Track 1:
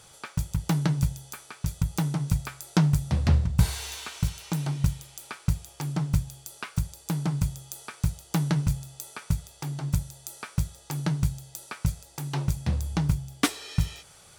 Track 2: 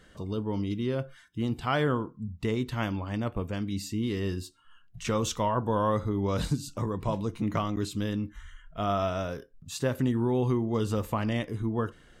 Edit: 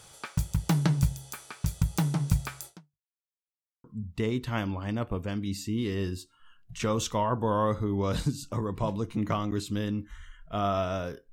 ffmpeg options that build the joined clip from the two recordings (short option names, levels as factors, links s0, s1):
-filter_complex "[0:a]apad=whole_dur=11.32,atrim=end=11.32,asplit=2[s0][s1];[s0]atrim=end=3.08,asetpts=PTS-STARTPTS,afade=t=out:st=2.66:d=0.42:c=exp[s2];[s1]atrim=start=3.08:end=3.84,asetpts=PTS-STARTPTS,volume=0[s3];[1:a]atrim=start=2.09:end=9.57,asetpts=PTS-STARTPTS,afade=t=in:d=0.004:c=hsin[s4];[s2][s3][s4]concat=n=3:v=0:a=1"